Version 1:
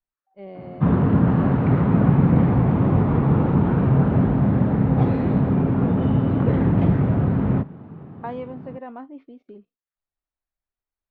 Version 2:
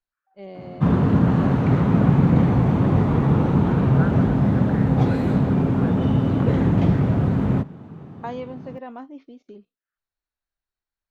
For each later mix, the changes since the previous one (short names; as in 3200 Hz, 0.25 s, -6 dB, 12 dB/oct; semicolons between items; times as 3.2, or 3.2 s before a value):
second voice: add bell 1500 Hz +14 dB 0.74 oct; master: remove LPF 2400 Hz 12 dB/oct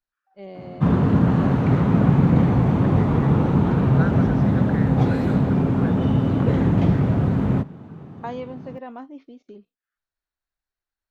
second voice: remove air absorption 370 m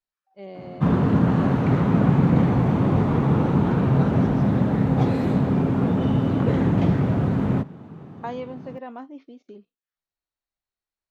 second voice: add bell 1500 Hz -14 dB 0.74 oct; master: add low shelf 77 Hz -8.5 dB